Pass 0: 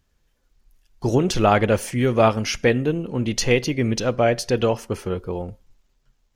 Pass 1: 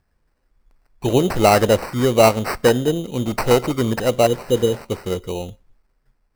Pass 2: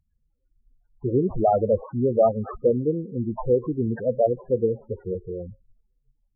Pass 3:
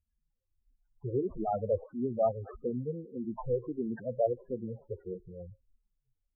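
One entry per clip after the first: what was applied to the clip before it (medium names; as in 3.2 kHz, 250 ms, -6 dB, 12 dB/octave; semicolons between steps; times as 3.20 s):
spectral replace 4.29–4.77 s, 540–9100 Hz after; sample-and-hold 13×; dynamic bell 580 Hz, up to +5 dB, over -28 dBFS, Q 0.82
loudest bins only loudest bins 8; vibrato 4.9 Hz 38 cents; trim -4 dB
barber-pole phaser -1.6 Hz; trim -7.5 dB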